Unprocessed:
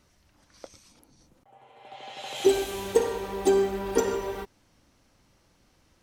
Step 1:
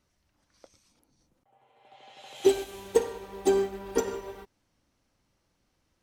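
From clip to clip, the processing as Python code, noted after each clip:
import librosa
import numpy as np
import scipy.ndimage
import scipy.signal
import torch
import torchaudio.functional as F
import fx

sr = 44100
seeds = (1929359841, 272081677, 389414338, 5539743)

y = fx.upward_expand(x, sr, threshold_db=-35.0, expansion=1.5)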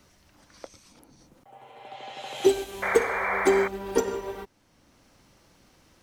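y = fx.spec_paint(x, sr, seeds[0], shape='noise', start_s=2.82, length_s=0.86, low_hz=460.0, high_hz=2400.0, level_db=-32.0)
y = fx.band_squash(y, sr, depth_pct=40)
y = F.gain(torch.from_numpy(y), 3.5).numpy()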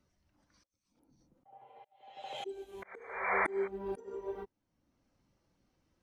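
y = fx.auto_swell(x, sr, attack_ms=517.0)
y = fx.spectral_expand(y, sr, expansion=1.5)
y = F.gain(torch.from_numpy(y), -3.5).numpy()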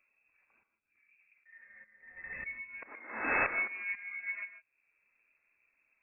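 y = fx.tracing_dist(x, sr, depth_ms=0.23)
y = fx.rev_gated(y, sr, seeds[1], gate_ms=180, shape='rising', drr_db=10.0)
y = fx.freq_invert(y, sr, carrier_hz=2600)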